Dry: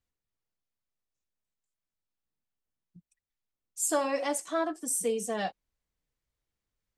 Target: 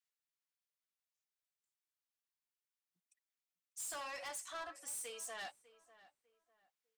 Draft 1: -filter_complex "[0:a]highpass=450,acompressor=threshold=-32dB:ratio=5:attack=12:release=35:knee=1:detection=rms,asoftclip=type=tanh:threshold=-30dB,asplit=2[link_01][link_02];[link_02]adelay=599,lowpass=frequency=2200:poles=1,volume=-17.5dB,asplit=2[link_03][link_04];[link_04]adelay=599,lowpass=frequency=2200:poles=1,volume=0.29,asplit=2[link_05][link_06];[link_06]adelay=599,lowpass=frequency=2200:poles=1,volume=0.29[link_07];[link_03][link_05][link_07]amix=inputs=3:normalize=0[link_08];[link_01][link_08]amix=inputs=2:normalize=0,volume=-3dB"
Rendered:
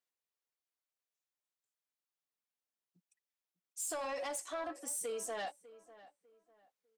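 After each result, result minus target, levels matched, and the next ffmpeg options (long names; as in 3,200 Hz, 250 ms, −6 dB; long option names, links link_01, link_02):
500 Hz band +6.0 dB; soft clipping: distortion −8 dB
-filter_complex "[0:a]highpass=1200,acompressor=threshold=-32dB:ratio=5:attack=12:release=35:knee=1:detection=rms,asoftclip=type=tanh:threshold=-30dB,asplit=2[link_01][link_02];[link_02]adelay=599,lowpass=frequency=2200:poles=1,volume=-17.5dB,asplit=2[link_03][link_04];[link_04]adelay=599,lowpass=frequency=2200:poles=1,volume=0.29,asplit=2[link_05][link_06];[link_06]adelay=599,lowpass=frequency=2200:poles=1,volume=0.29[link_07];[link_03][link_05][link_07]amix=inputs=3:normalize=0[link_08];[link_01][link_08]amix=inputs=2:normalize=0,volume=-3dB"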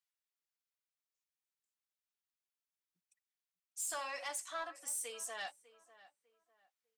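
soft clipping: distortion −7 dB
-filter_complex "[0:a]highpass=1200,acompressor=threshold=-32dB:ratio=5:attack=12:release=35:knee=1:detection=rms,asoftclip=type=tanh:threshold=-38dB,asplit=2[link_01][link_02];[link_02]adelay=599,lowpass=frequency=2200:poles=1,volume=-17.5dB,asplit=2[link_03][link_04];[link_04]adelay=599,lowpass=frequency=2200:poles=1,volume=0.29,asplit=2[link_05][link_06];[link_06]adelay=599,lowpass=frequency=2200:poles=1,volume=0.29[link_07];[link_03][link_05][link_07]amix=inputs=3:normalize=0[link_08];[link_01][link_08]amix=inputs=2:normalize=0,volume=-3dB"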